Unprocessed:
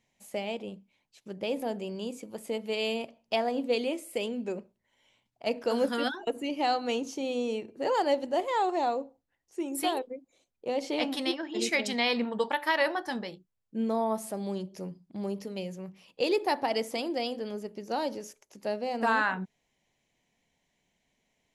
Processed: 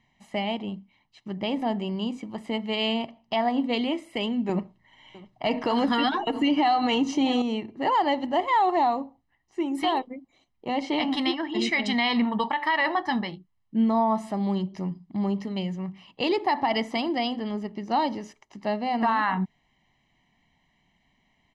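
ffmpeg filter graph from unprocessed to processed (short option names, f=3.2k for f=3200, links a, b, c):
-filter_complex "[0:a]asettb=1/sr,asplit=3[a][b][c];[a]atrim=end=4.494[d];[b]atrim=start=4.49:end=7.42,asetpts=PTS-STARTPTS,afade=t=in:d=0.004:c=qsin,afade=t=out:st=2.926:d=0.004:c=qsin,acontrast=66,aecho=1:1:6.5:0.34,atrim=end_sample=129213,aecho=1:1:655:0.0794,atrim=end_sample=129213[e];[c]atrim=start=7.416[f];[d][e]acrossfade=d=0.004:c1=hsin:c2=qsin[g];[g][f]acrossfade=d=0.004:c1=qsin:c2=hsin,lowpass=3.3k,aecho=1:1:1:0.73,alimiter=limit=-21.5dB:level=0:latency=1:release=74,volume=6.5dB"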